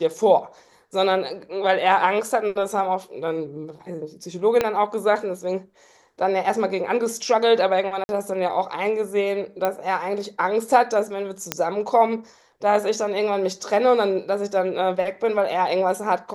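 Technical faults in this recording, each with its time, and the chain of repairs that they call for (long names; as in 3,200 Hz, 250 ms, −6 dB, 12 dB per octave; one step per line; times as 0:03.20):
0:04.61: click −7 dBFS
0:08.04–0:08.09: drop-out 51 ms
0:09.65: click −10 dBFS
0:11.52: click −4 dBFS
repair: click removal
repair the gap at 0:08.04, 51 ms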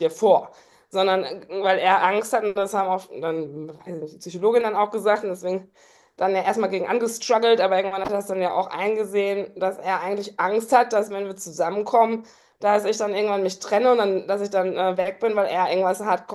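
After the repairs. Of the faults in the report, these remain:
0:04.61: click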